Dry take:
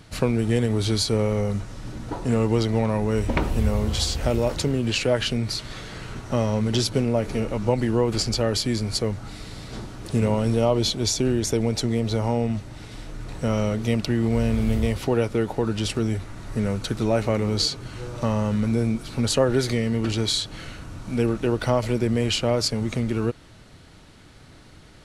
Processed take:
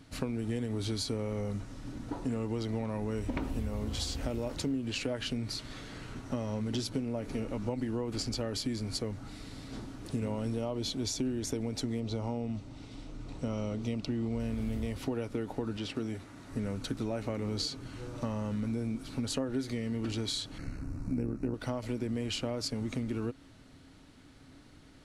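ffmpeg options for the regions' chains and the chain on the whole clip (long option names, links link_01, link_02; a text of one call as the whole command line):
ffmpeg -i in.wav -filter_complex "[0:a]asettb=1/sr,asplit=3[link_01][link_02][link_03];[link_01]atrim=end=12.004[link_04];[link_02]atrim=start=12:end=14.4,asetpts=PTS-STARTPTS,afade=type=in:duration=0.004:curve=qsin,afade=type=out:start_time=2.396:duration=0.004:curve=qsin,lowpass=7400,equalizer=frequency=1700:width_type=o:width=0.45:gain=-8[link_05];[link_03]atrim=start=14.396[link_06];[link_04][link_05]acrossfade=duration=0.004:curve1=hsin:curve2=qsin[link_07];[link_07][link_06]acrossfade=duration=0.004:curve1=qsin:curve2=hsin,asettb=1/sr,asplit=3[link_08][link_09][link_10];[link_08]atrim=end=15.774[link_11];[link_09]atrim=start=15.77:end=16.53,asetpts=PTS-STARTPTS,afade=type=in:duration=0.004:curve=qsin,afade=type=out:start_time=0.756:duration=0.004:curve=qsin,acrossover=split=4700[link_12][link_13];[link_13]acompressor=threshold=-47dB:ratio=4:attack=1:release=60[link_14];[link_12][link_14]amix=inputs=2:normalize=0,highpass=frequency=180:poles=1[link_15];[link_10]atrim=start=16.526[link_16];[link_11][link_15]acrossfade=duration=0.004:curve1=hsin:curve2=qsin[link_17];[link_17][link_16]acrossfade=duration=0.004:curve1=qsin:curve2=hsin,asettb=1/sr,asplit=3[link_18][link_19][link_20];[link_18]atrim=end=20.584[link_21];[link_19]atrim=start=20.58:end=21.54,asetpts=PTS-STARTPTS,afade=type=in:duration=0.004:curve=qsin,afade=type=out:start_time=0.956:duration=0.004:curve=qsin,lowshelf=frequency=310:gain=12,tremolo=f=68:d=0.667,asuperstop=centerf=3300:order=4:qfactor=2.1[link_22];[link_20]atrim=start=21.536[link_23];[link_21][link_22]acrossfade=duration=0.004:curve1=hsin:curve2=qsin[link_24];[link_24][link_23]acrossfade=duration=0.004:curve1=qsin:curve2=hsin,equalizer=frequency=270:width_type=o:width=0.21:gain=13.5,acompressor=threshold=-21dB:ratio=5,volume=-9dB" out.wav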